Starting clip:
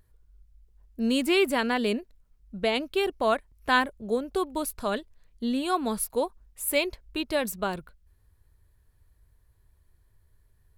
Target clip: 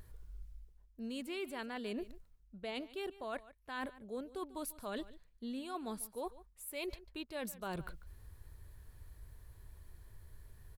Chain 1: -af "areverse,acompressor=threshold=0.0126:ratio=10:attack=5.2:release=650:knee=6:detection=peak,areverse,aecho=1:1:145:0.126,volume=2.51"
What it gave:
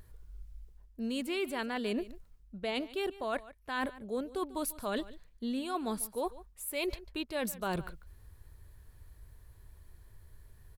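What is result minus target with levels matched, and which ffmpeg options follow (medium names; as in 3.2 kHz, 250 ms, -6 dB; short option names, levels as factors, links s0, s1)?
compression: peak gain reduction -7 dB
-af "areverse,acompressor=threshold=0.00501:ratio=10:attack=5.2:release=650:knee=6:detection=peak,areverse,aecho=1:1:145:0.126,volume=2.51"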